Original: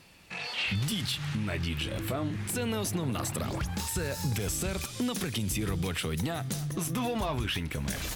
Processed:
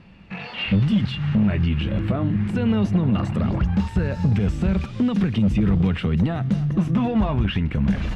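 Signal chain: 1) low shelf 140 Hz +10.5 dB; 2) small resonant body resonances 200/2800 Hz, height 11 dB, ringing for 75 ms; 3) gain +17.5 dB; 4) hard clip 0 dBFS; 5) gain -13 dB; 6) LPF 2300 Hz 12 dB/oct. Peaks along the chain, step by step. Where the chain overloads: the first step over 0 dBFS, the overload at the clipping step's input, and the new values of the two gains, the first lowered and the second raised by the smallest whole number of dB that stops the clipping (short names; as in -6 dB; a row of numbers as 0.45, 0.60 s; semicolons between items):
-14.5, -12.0, +5.5, 0.0, -13.0, -13.0 dBFS; step 3, 5.5 dB; step 3 +11.5 dB, step 5 -7 dB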